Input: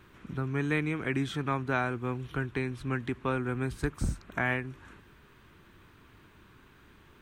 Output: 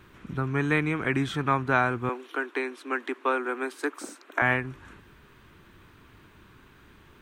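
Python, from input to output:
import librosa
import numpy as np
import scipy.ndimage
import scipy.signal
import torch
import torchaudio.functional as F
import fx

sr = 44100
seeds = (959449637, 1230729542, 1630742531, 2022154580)

y = fx.steep_highpass(x, sr, hz=280.0, slope=48, at=(2.09, 4.42))
y = fx.dynamic_eq(y, sr, hz=1100.0, q=0.76, threshold_db=-44.0, ratio=4.0, max_db=5)
y = y * librosa.db_to_amplitude(3.0)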